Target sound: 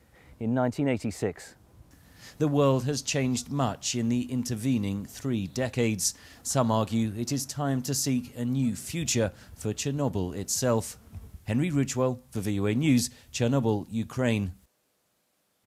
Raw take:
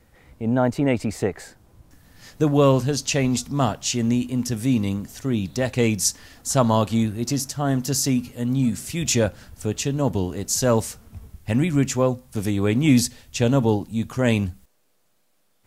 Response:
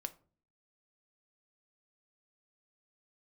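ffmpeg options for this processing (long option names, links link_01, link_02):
-filter_complex "[0:a]highpass=46,asplit=2[link_01][link_02];[link_02]acompressor=threshold=-33dB:ratio=6,volume=-2.5dB[link_03];[link_01][link_03]amix=inputs=2:normalize=0,aresample=32000,aresample=44100,volume=-7dB"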